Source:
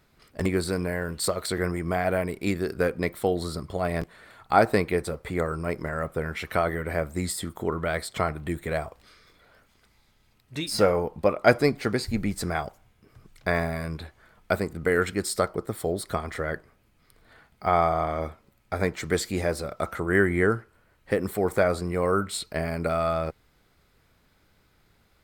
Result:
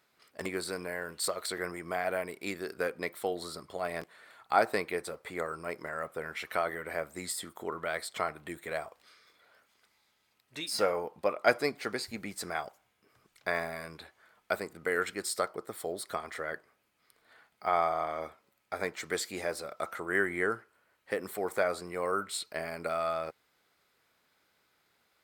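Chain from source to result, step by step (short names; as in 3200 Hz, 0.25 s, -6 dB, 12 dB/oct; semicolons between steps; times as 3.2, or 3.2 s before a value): HPF 210 Hz 6 dB/oct; low shelf 300 Hz -11.5 dB; gain -4 dB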